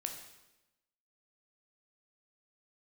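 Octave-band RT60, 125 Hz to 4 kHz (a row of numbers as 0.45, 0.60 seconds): 1.0, 1.1, 1.0, 0.95, 0.95, 0.90 seconds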